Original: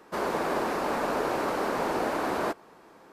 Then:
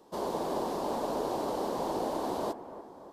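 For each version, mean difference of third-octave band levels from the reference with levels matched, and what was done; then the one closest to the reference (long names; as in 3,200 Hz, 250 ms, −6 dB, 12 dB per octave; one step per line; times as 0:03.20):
3.0 dB: flat-topped bell 1,800 Hz −13 dB 1.3 octaves
on a send: bucket-brigade delay 293 ms, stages 4,096, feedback 55%, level −13 dB
on the sum: level −3.5 dB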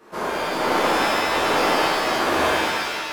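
7.5 dB: amplitude tremolo 1.3 Hz, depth 65%
reverb with rising layers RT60 1.6 s, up +7 semitones, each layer −2 dB, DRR −9.5 dB
level −1.5 dB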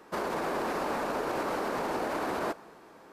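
1.5 dB: brickwall limiter −23 dBFS, peak gain reduction 6.5 dB
four-comb reverb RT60 1.9 s, combs from 26 ms, DRR 20 dB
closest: third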